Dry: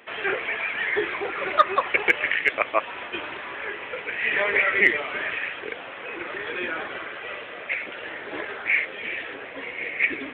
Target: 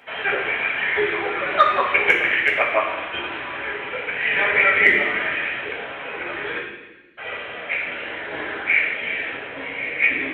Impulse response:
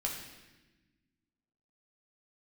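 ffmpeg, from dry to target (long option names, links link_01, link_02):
-filter_complex "[0:a]asplit=3[link_01][link_02][link_03];[link_01]afade=type=out:start_time=6.58:duration=0.02[link_04];[link_02]asuperpass=centerf=5800:order=12:qfactor=2,afade=type=in:start_time=6.58:duration=0.02,afade=type=out:start_time=7.17:duration=0.02[link_05];[link_03]afade=type=in:start_time=7.17:duration=0.02[link_06];[link_04][link_05][link_06]amix=inputs=3:normalize=0[link_07];[1:a]atrim=start_sample=2205[link_08];[link_07][link_08]afir=irnorm=-1:irlink=0,volume=1.5dB"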